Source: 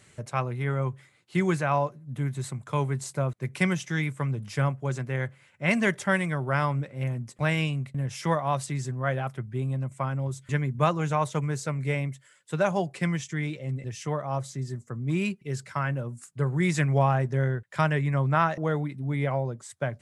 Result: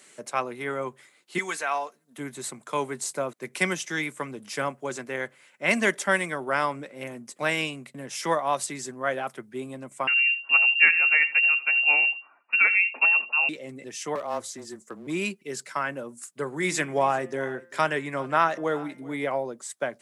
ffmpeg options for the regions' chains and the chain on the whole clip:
-filter_complex "[0:a]asettb=1/sr,asplit=3[a][b][c];[a]atrim=end=1.384[d];[b]atrim=start=1.38:end=2.18,asetpts=PTS-STARTPTS,afade=t=in:d=0.004:c=qsin,afade=t=out:st=0.796:d=0.004:c=qsin,highpass=f=1.1k:p=1,aecho=1:1:4.4:0.45,atrim=end_sample=35280[e];[c]atrim=start=2.176[f];[d][e]acrossfade=d=0.004:c1=hsin:c2=qsin[g];[g][f]acrossfade=d=0.004:c1=qsin:c2=hsin,asettb=1/sr,asplit=3[h][i][j];[h]atrim=end=10.074[k];[i]atrim=start=10.07:end=13.49,asetpts=PTS-STARTPTS,afade=t=in:d=0.004:c=qsin,afade=t=out:st=3.416:d=0.004:c=qsin,lowshelf=f=120:g=9.5,aecho=1:1:83:0.141,atrim=end_sample=150822,lowpass=f=2.5k:t=q:w=0.5098,lowpass=f=2.5k:t=q:w=0.6013,lowpass=f=2.5k:t=q:w=0.9,lowpass=f=2.5k:t=q:w=2.563,afreqshift=-2900[l];[j]atrim=start=13.486[m];[k][l]acrossfade=d=0.004:c1=hsin:c2=qsin[n];[n][m]acrossfade=d=0.004:c1=qsin:c2=hsin,asettb=1/sr,asplit=3[o][p][q];[o]atrim=end=14.154[r];[p]atrim=start=14.15:end=15.07,asetpts=PTS-STARTPTS,afade=t=in:d=0.004:c=qsin,afade=t=out:st=0.916:d=0.004:c=qsin,aeval=exprs='clip(val(0),-1,0.0316)':c=same,afreqshift=-19[s];[q]atrim=start=15.066[t];[r][s]acrossfade=d=0.004:c1=hsin:c2=qsin[u];[u][t]acrossfade=d=0.004:c1=qsin:c2=hsin,asettb=1/sr,asplit=3[v][w][x];[v]atrim=end=16.554[y];[w]atrim=start=16.55:end=19.27,asetpts=PTS-STARTPTS,afade=t=in:d=0.004:c=qsin,afade=t=out:st=2.716:d=0.004:c=qsin,bandreject=f=174.4:t=h:w=4,bandreject=f=348.8:t=h:w=4,bandreject=f=523.2:t=h:w=4,bandreject=f=697.6:t=h:w=4,bandreject=f=872:t=h:w=4,bandreject=f=1.0464k:t=h:w=4,bandreject=f=1.2208k:t=h:w=4,bandreject=f=1.3952k:t=h:w=4,bandreject=f=1.5696k:t=h:w=4,bandreject=f=1.744k:t=h:w=4,bandreject=f=1.9184k:t=h:w=4,bandreject=f=2.0928k:t=h:w=4,bandreject=f=2.2672k:t=h:w=4,bandreject=f=2.4416k:t=h:w=4,bandreject=f=2.616k:t=h:w=4,bandreject=f=2.7904k:t=h:w=4,bandreject=f=2.9648k:t=h:w=4,bandreject=f=3.1392k:t=h:w=4,bandreject=f=3.3136k:t=h:w=4,bandreject=f=3.488k:t=h:w=4,aecho=1:1:392:0.0841,atrim=end_sample=119952[z];[x]atrim=start=19.266[aa];[y][z]acrossfade=d=0.004:c1=hsin:c2=qsin[ab];[ab][aa]acrossfade=d=0.004:c1=qsin:c2=hsin,highpass=f=240:w=0.5412,highpass=f=240:w=1.3066,highshelf=f=4.9k:g=6.5,volume=2dB"

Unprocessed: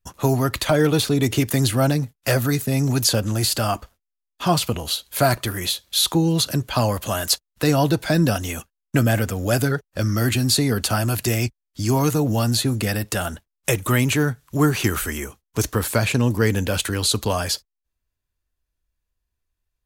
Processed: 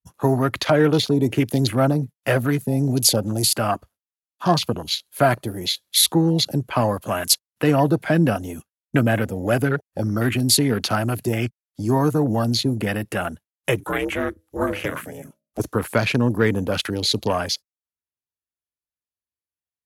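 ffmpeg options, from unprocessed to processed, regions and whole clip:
-filter_complex "[0:a]asettb=1/sr,asplit=3[a][b][c];[a]atrim=end=13.804[d];[b]atrim=start=13.8:end=15.6,asetpts=PTS-STARTPTS,afade=t=in:d=0.004:c=qsin,afade=t=out:st=1.796:d=0.004:c=qsin,lowshelf=f=68:g=-10.5,bandreject=f=60:t=h:w=6,bandreject=f=120:t=h:w=6,bandreject=f=180:t=h:w=6,bandreject=f=240:t=h:w=6,bandreject=f=300:t=h:w=6,bandreject=f=360:t=h:w=6,bandreject=f=420:t=h:w=6,aeval=exprs='val(0)*sin(2*PI*200*n/s)':c=same[e];[c]atrim=start=15.596[f];[d][e]acrossfade=d=0.004:c1=hsin:c2=qsin[g];[g][f]acrossfade=d=0.004:c1=qsin:c2=hsin,afwtdn=0.0355,highpass=130,equalizer=f=11k:t=o:w=0.3:g=9.5,volume=1.5dB"

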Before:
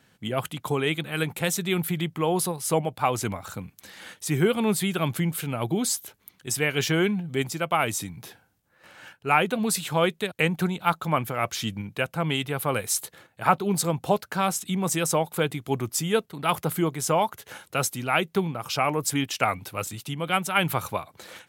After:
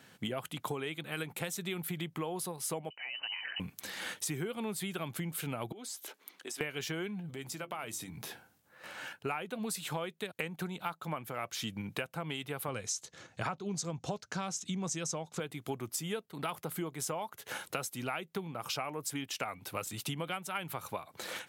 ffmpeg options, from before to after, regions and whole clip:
-filter_complex "[0:a]asettb=1/sr,asplit=3[a][b][c];[a]atrim=end=2.904[d];[b]atrim=start=2.9:end=3.6,asetpts=PTS-STARTPTS,afade=t=in:d=0.004:c=qsin,afade=t=out:st=0.696:d=0.004:c=qsin,acompressor=threshold=-37dB:ratio=5:attack=3.2:release=140:knee=1:detection=peak,lowpass=f=2.6k:t=q:w=0.5098,lowpass=f=2.6k:t=q:w=0.6013,lowpass=f=2.6k:t=q:w=0.9,lowpass=f=2.6k:t=q:w=2.563,afreqshift=-3100[e];[c]atrim=start=3.596[f];[d][e]acrossfade=d=0.004:c1=hsin:c2=qsin[g];[g][f]acrossfade=d=0.004:c1=qsin:c2=hsin,asettb=1/sr,asplit=3[h][i][j];[h]atrim=end=5.724[k];[i]atrim=start=5.72:end=6.61,asetpts=PTS-STARTPTS,afade=t=in:d=0.004:c=qsin,afade=t=out:st=0.886:d=0.004:c=qsin,highpass=f=270:w=0.5412,highpass=f=270:w=1.3066,highshelf=f=10k:g=-10,acompressor=threshold=-43dB:ratio=5:attack=3.2:release=140:knee=1:detection=peak[l];[j]atrim=start=6.606[m];[k][l]acrossfade=d=0.004:c1=hsin:c2=qsin[n];[n][m]acrossfade=d=0.004:c1=qsin:c2=hsin,asettb=1/sr,asplit=3[o][p][q];[o]atrim=end=7.304[r];[p]atrim=start=7.3:end=9.16,asetpts=PTS-STARTPTS,afade=t=in:d=0.004:c=qsin,afade=t=out:st=1.856:d=0.004:c=qsin,acompressor=threshold=-42dB:ratio=4:attack=3.2:release=140:knee=1:detection=peak,bandreject=f=50:t=h:w=6,bandreject=f=100:t=h:w=6,bandreject=f=150:t=h:w=6,bandreject=f=200:t=h:w=6,bandreject=f=250:t=h:w=6,bandreject=f=300:t=h:w=6,bandreject=f=350:t=h:w=6,asplit=2[s][t];[t]adelay=14,volume=-14dB[u];[s][u]amix=inputs=2:normalize=0,atrim=end_sample=82026[v];[q]atrim=start=9.156[w];[r][v]acrossfade=d=0.004:c1=hsin:c2=qsin[x];[x][w]acrossfade=d=0.004:c1=qsin:c2=hsin,asettb=1/sr,asplit=3[y][z][aa];[y]atrim=end=12.684[ab];[z]atrim=start=12.68:end=15.4,asetpts=PTS-STARTPTS,afade=t=in:d=0.004:c=qsin,afade=t=out:st=2.716:d=0.004:c=qsin,lowpass=f=6.3k:t=q:w=3.8,lowshelf=f=170:g=11.5,bandreject=f=870:w=19[ac];[aa]atrim=start=15.396[ad];[ab][ac]acrossfade=d=0.004:c1=hsin:c2=qsin[ae];[ae][ad]acrossfade=d=0.004:c1=qsin:c2=hsin,highpass=f=160:p=1,acompressor=threshold=-37dB:ratio=16,volume=3.5dB"

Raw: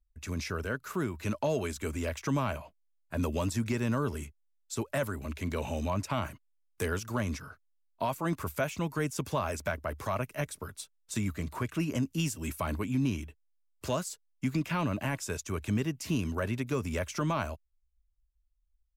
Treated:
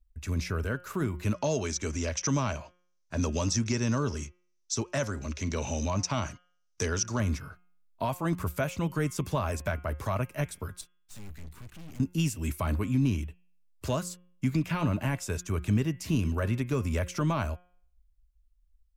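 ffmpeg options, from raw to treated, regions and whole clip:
-filter_complex "[0:a]asettb=1/sr,asplit=3[a][b][c];[a]atrim=end=1.344[d];[b]atrim=start=1.34:end=7.2,asetpts=PTS-STARTPTS,afade=t=in:d=0.004:c=qsin,afade=t=out:st=5.856:d=0.004:c=qsin,lowpass=f=5.9k:t=q:w=7.3,lowshelf=f=71:g=-9.5[e];[c]atrim=start=7.196[f];[d][e]acrossfade=d=0.004:c1=hsin:c2=qsin[g];[g][f]acrossfade=d=0.004:c1=qsin:c2=hsin,asettb=1/sr,asplit=3[h][i][j];[h]atrim=end=10.814[k];[i]atrim=start=10.81:end=12,asetpts=PTS-STARTPTS,afade=t=in:d=0.004:c=qsin,afade=t=out:st=1.186:d=0.004:c=qsin,asuperstop=centerf=670:order=4:qfactor=0.52,aeval=exprs='(tanh(251*val(0)+0.8)-tanh(0.8))/251':c=same[l];[j]atrim=start=11.996[m];[k][l]acrossfade=d=0.004:c1=hsin:c2=qsin[n];[n][m]acrossfade=d=0.004:c1=qsin:c2=hsin,lowshelf=f=140:g=9.5,bandreject=f=178.5:t=h:w=4,bandreject=f=357:t=h:w=4,bandreject=f=535.5:t=h:w=4,bandreject=f=714:t=h:w=4,bandreject=f=892.5:t=h:w=4,bandreject=f=1.071k:t=h:w=4,bandreject=f=1.2495k:t=h:w=4,bandreject=f=1.428k:t=h:w=4,bandreject=f=1.6065k:t=h:w=4,bandreject=f=1.785k:t=h:w=4,bandreject=f=1.9635k:t=h:w=4,bandreject=f=2.142k:t=h:w=4,bandreject=f=2.3205k:t=h:w=4,bandreject=f=2.499k:t=h:w=4,bandreject=f=2.6775k:t=h:w=4,bandreject=f=2.856k:t=h:w=4,bandreject=f=3.0345k:t=h:w=4,bandreject=f=3.213k:t=h:w=4,bandreject=f=3.3915k:t=h:w=4"

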